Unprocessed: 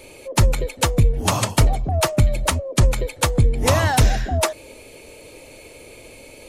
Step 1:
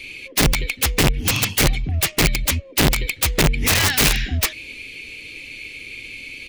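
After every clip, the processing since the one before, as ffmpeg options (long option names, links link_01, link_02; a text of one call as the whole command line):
ffmpeg -i in.wav -af "firequalizer=gain_entry='entry(280,0);entry(620,-18);entry(2300,15);entry(7900,-5)':delay=0.05:min_phase=1,aeval=exprs='(mod(3.35*val(0)+1,2)-1)/3.35':channel_layout=same" out.wav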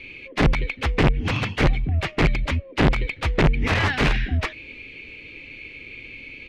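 ffmpeg -i in.wav -af "lowpass=2100" out.wav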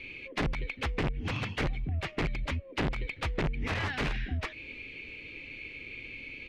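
ffmpeg -i in.wav -af "acompressor=threshold=-27dB:ratio=3,volume=-4dB" out.wav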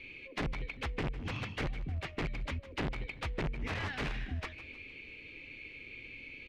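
ffmpeg -i in.wav -af "aecho=1:1:154|308|462|616:0.158|0.0682|0.0293|0.0126,volume=-5dB" out.wav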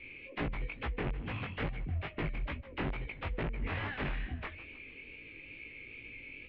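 ffmpeg -i in.wav -af "lowpass=frequency=3100:width=0.5412,lowpass=frequency=3100:width=1.3066,flanger=delay=17:depth=5.4:speed=2.3,volume=3dB" out.wav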